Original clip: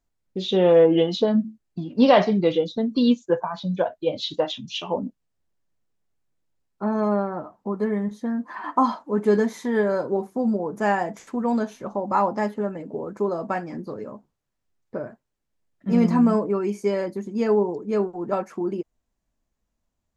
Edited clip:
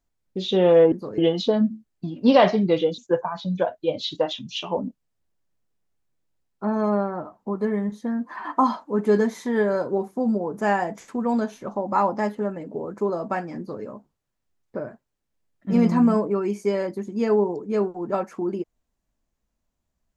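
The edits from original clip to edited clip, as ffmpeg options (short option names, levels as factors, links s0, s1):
-filter_complex "[0:a]asplit=4[s0][s1][s2][s3];[s0]atrim=end=0.922[s4];[s1]atrim=start=13.768:end=14.032[s5];[s2]atrim=start=0.918:end=2.722[s6];[s3]atrim=start=3.168[s7];[s4][s5]acrossfade=d=0.004:c1=hsin:c2=hsin[s8];[s8][s6]acrossfade=d=0.004:c1=hsin:c2=hsin[s9];[s9][s7]acrossfade=d=0.004:c1=hsin:c2=hsin"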